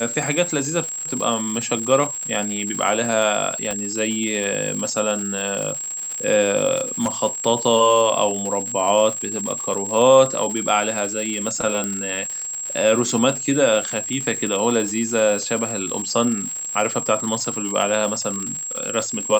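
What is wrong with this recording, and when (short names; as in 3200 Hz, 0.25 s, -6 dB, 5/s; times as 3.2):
crackle 180/s -26 dBFS
tone 7600 Hz -26 dBFS
3.71 pop -11 dBFS
6.76–7.09 clipped -16 dBFS
9.74–9.75 gap 5.2 ms
11.84 pop -11 dBFS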